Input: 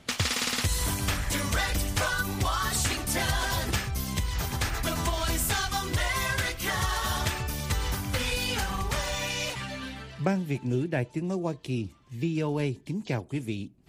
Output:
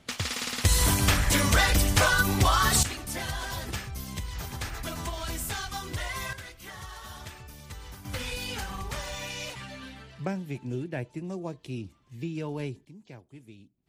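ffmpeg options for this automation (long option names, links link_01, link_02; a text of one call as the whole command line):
ffmpeg -i in.wav -af "asetnsamples=nb_out_samples=441:pad=0,asendcmd='0.65 volume volume 5.5dB;2.83 volume volume -6dB;6.33 volume volume -14dB;8.05 volume volume -5.5dB;12.85 volume volume -17dB',volume=-4dB" out.wav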